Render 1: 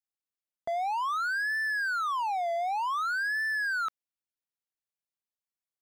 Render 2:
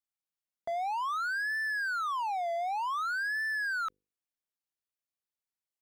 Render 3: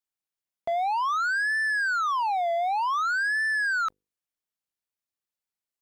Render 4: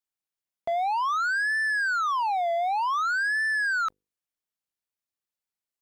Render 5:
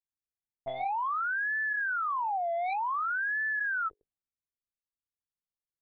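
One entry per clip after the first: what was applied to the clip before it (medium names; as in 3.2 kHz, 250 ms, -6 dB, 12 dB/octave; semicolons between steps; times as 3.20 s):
hum notches 50/100/150/200/250/300/350/400/450/500 Hz; trim -2.5 dB
waveshaping leveller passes 2; trim +4.5 dB
no audible change
monotone LPC vocoder at 8 kHz 130 Hz; level-controlled noise filter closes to 360 Hz, open at -27 dBFS; trim -5 dB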